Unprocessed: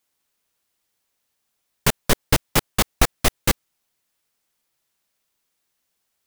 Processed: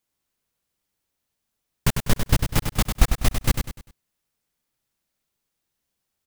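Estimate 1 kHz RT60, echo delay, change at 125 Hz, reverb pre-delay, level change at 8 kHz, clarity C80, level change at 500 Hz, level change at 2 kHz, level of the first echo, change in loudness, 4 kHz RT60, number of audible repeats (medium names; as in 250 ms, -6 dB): no reverb, 99 ms, +3.0 dB, no reverb, -5.5 dB, no reverb, -6.5 dB, -5.5 dB, -6.5 dB, -2.5 dB, no reverb, 4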